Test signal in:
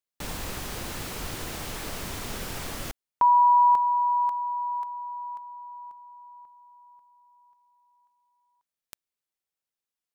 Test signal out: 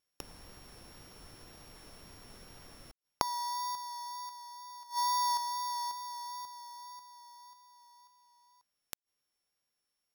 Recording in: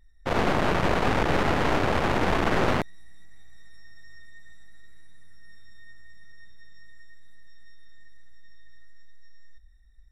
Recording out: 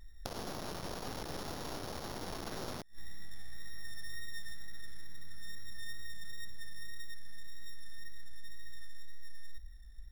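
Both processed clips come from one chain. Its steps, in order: sorted samples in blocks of 8 samples; wow and flutter 17 cents; inverted gate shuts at -27 dBFS, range -24 dB; trim +5.5 dB

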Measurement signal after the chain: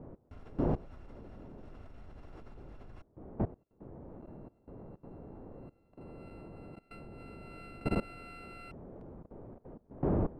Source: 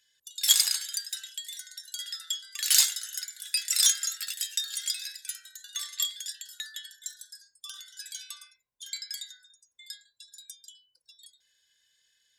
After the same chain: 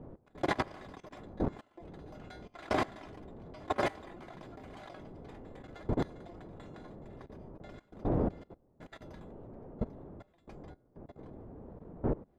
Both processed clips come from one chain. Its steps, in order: bit-reversed sample order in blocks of 256 samples; wind noise 450 Hz -44 dBFS; Bessel low-pass 710 Hz, order 2; level held to a coarse grid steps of 20 dB; trim +11.5 dB

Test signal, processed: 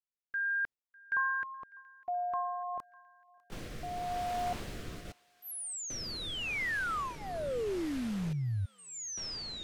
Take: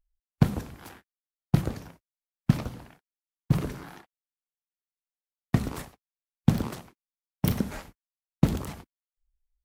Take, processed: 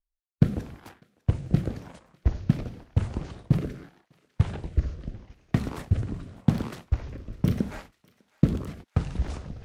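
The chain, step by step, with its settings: ever faster or slower copies 659 ms, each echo -7 st, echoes 2; rotary cabinet horn 0.85 Hz; low-pass 3.9 kHz 6 dB/octave; gate -46 dBFS, range -9 dB; thinning echo 600 ms, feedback 72%, high-pass 1.2 kHz, level -22 dB; trim +2 dB

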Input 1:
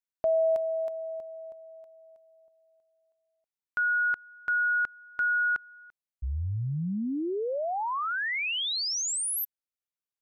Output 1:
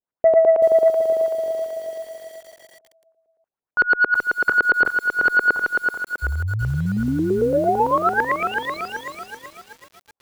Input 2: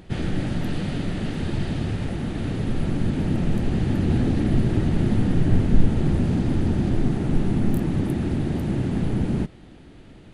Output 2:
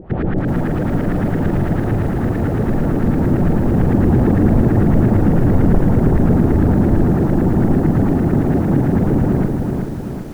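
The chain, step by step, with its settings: LFO low-pass saw up 8.9 Hz 410–1800 Hz; Chebyshev shaper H 3 -37 dB, 5 -8 dB, 6 -38 dB, 7 -26 dB, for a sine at -3.5 dBFS; bit-crushed delay 381 ms, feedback 55%, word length 7-bit, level -4 dB; trim -1.5 dB

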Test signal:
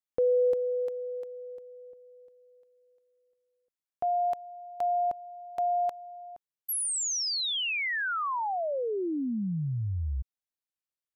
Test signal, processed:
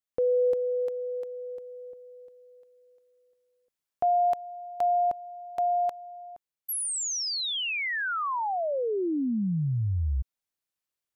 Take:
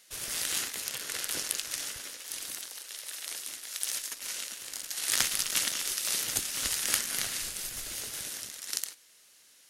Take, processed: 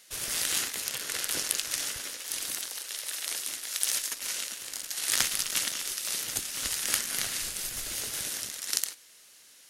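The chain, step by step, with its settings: gain riding within 4 dB 2 s; trim +1.5 dB

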